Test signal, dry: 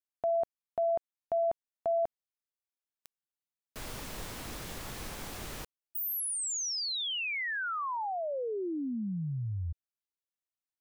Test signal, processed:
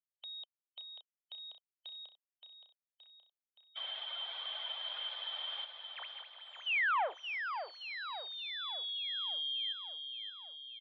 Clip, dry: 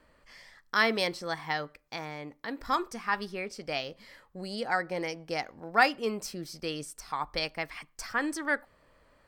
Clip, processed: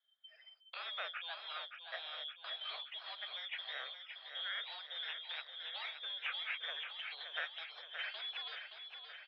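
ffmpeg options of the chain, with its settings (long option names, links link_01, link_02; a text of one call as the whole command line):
ffmpeg -i in.wav -filter_complex "[0:a]afftfilt=real='real(if(lt(b,272),68*(eq(floor(b/68),0)*2+eq(floor(b/68),1)*3+eq(floor(b/68),2)*0+eq(floor(b/68),3)*1)+mod(b,68),b),0)':imag='imag(if(lt(b,272),68*(eq(floor(b/68),0)*2+eq(floor(b/68),1)*3+eq(floor(b/68),2)*0+eq(floor(b/68),3)*1)+mod(b,68),b),0)':win_size=2048:overlap=0.75,afftdn=noise_reduction=25:noise_floor=-46,acompressor=threshold=-35dB:ratio=3:attack=1.1:release=631:detection=peak,aeval=exprs='(tanh(100*val(0)+0.4)-tanh(0.4))/100':channel_layout=same,asplit=2[link_01][link_02];[link_02]aecho=0:1:572|1144|1716|2288|2860|3432|4004:0.422|0.245|0.142|0.0823|0.0477|0.0277|0.0161[link_03];[link_01][link_03]amix=inputs=2:normalize=0,highpass=frequency=460:width_type=q:width=0.5412,highpass=frequency=460:width_type=q:width=1.307,lowpass=frequency=2700:width_type=q:width=0.5176,lowpass=frequency=2700:width_type=q:width=0.7071,lowpass=frequency=2700:width_type=q:width=1.932,afreqshift=160,volume=11.5dB" out.wav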